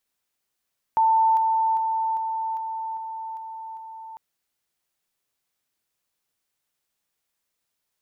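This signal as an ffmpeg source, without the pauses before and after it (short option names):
-f lavfi -i "aevalsrc='pow(10,(-15.5-3*floor(t/0.4))/20)*sin(2*PI*892*t)':d=3.2:s=44100"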